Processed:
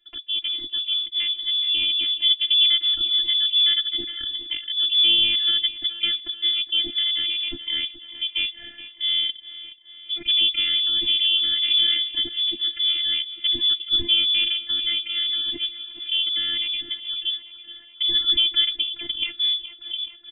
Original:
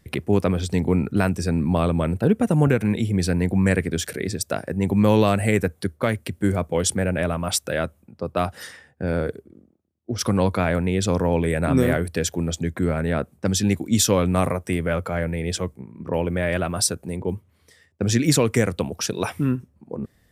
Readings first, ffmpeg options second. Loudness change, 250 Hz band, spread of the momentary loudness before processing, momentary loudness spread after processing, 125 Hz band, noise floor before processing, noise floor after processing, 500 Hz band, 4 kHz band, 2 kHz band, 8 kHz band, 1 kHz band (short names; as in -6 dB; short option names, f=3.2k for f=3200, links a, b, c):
+2.5 dB, -23.5 dB, 10 LU, 11 LU, under -30 dB, -62 dBFS, -45 dBFS, under -25 dB, +18.0 dB, -2.5 dB, under -40 dB, under -20 dB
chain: -filter_complex "[0:a]asplit=2[a][b];[b]aecho=0:1:423|846|1269|1692|2115:0.15|0.0853|0.0486|0.0277|0.0158[c];[a][c]amix=inputs=2:normalize=0,dynaudnorm=f=160:g=17:m=11.5dB,lowpass=f=3.1k:t=q:w=0.5098,lowpass=f=3.1k:t=q:w=0.6013,lowpass=f=3.1k:t=q:w=0.9,lowpass=f=3.1k:t=q:w=2.563,afreqshift=-3600,lowshelf=f=460:g=9.5,acrossover=split=320|1800[d][e][f];[e]acompressor=threshold=-43dB:ratio=6[g];[d][g][f]amix=inputs=3:normalize=0,afftfilt=real='hypot(re,im)*cos(PI*b)':imag='0':win_size=512:overlap=0.75,equalizer=f=125:t=o:w=1:g=5,equalizer=f=250:t=o:w=1:g=10,equalizer=f=1k:t=o:w=1:g=-12,volume=-3.5dB"